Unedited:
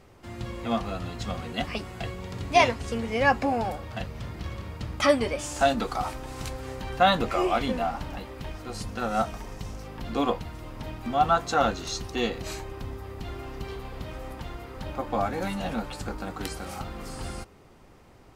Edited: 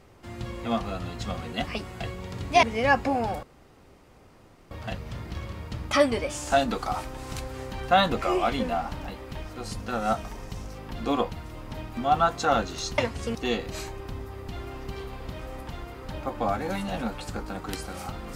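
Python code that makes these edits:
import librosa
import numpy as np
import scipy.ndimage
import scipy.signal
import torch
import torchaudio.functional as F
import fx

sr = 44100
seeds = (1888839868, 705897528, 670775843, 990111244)

y = fx.edit(x, sr, fx.move(start_s=2.63, length_s=0.37, to_s=12.07),
    fx.insert_room_tone(at_s=3.8, length_s=1.28), tone=tone)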